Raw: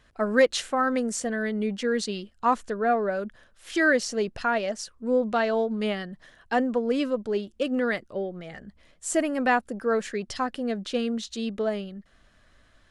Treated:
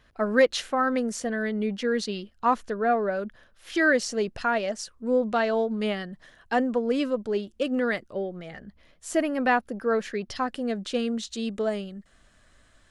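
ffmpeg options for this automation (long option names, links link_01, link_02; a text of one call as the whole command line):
ffmpeg -i in.wav -af "asetnsamples=nb_out_samples=441:pad=0,asendcmd='3.95 equalizer g 0;8.5 equalizer g -9;10.47 equalizer g 3;11.45 equalizer g 10',equalizer=frequency=8000:width_type=o:width=0.52:gain=-7" out.wav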